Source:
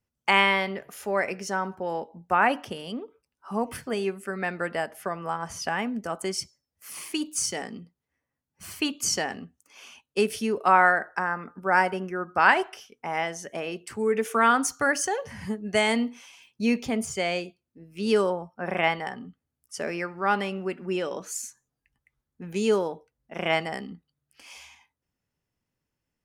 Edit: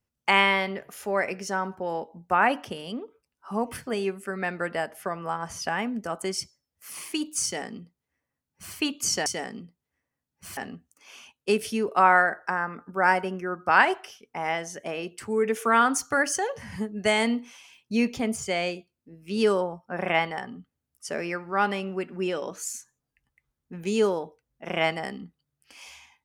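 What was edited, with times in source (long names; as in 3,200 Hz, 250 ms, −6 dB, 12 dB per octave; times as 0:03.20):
0:07.44–0:08.75: duplicate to 0:09.26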